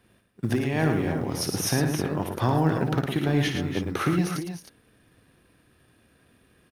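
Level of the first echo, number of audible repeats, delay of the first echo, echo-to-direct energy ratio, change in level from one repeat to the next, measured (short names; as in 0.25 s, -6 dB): -9.0 dB, 3, 57 ms, -3.0 dB, no steady repeat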